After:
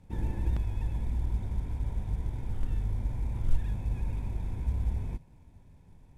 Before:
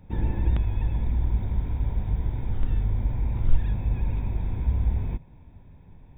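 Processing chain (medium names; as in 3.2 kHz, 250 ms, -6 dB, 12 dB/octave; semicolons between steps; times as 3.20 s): CVSD coder 64 kbps; trim -6 dB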